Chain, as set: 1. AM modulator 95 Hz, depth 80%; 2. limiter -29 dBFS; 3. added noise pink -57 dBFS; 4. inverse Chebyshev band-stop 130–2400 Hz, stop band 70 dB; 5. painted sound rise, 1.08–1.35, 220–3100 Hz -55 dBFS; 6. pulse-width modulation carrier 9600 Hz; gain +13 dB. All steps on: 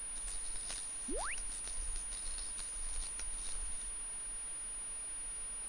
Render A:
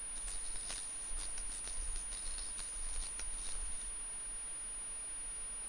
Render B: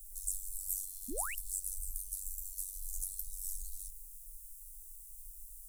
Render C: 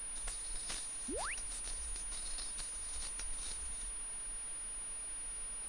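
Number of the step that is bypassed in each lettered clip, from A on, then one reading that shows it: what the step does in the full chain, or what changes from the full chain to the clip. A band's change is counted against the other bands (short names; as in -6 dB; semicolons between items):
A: 5, 250 Hz band -5.0 dB; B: 6, 4 kHz band -8.0 dB; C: 1, 4 kHz band +1.5 dB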